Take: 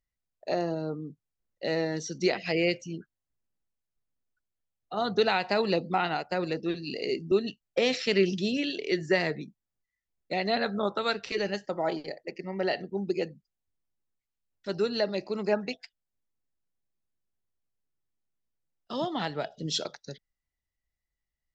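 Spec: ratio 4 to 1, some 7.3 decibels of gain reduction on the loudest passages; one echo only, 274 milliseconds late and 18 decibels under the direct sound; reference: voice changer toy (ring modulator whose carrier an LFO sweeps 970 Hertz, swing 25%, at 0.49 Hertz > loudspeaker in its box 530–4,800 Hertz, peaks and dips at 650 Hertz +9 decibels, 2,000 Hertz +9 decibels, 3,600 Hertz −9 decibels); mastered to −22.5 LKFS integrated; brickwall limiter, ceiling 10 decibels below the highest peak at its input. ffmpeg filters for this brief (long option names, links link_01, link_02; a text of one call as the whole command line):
ffmpeg -i in.wav -af "acompressor=threshold=-28dB:ratio=4,alimiter=level_in=1.5dB:limit=-24dB:level=0:latency=1,volume=-1.5dB,aecho=1:1:274:0.126,aeval=exprs='val(0)*sin(2*PI*970*n/s+970*0.25/0.49*sin(2*PI*0.49*n/s))':channel_layout=same,highpass=530,equalizer=frequency=650:width_type=q:width=4:gain=9,equalizer=frequency=2000:width_type=q:width=4:gain=9,equalizer=frequency=3600:width_type=q:width=4:gain=-9,lowpass=frequency=4800:width=0.5412,lowpass=frequency=4800:width=1.3066,volume=15dB" out.wav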